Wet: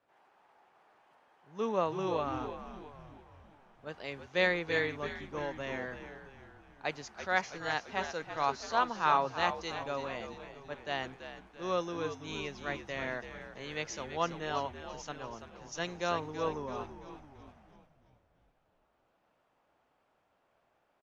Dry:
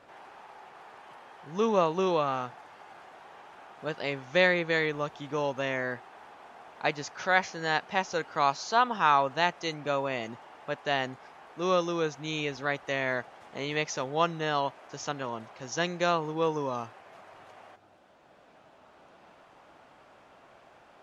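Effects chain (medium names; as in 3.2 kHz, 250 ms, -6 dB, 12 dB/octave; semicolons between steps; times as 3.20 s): frequency-shifting echo 334 ms, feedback 57%, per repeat -73 Hz, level -8 dB; three bands expanded up and down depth 40%; trim -7.5 dB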